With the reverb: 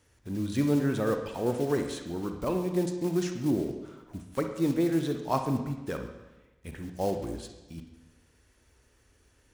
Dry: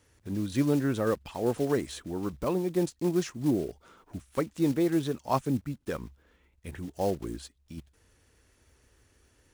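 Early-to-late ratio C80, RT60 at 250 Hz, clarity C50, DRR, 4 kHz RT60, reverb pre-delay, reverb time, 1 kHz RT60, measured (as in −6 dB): 9.0 dB, 1.1 s, 6.5 dB, 5.5 dB, 1.0 s, 39 ms, 1.1 s, 1.1 s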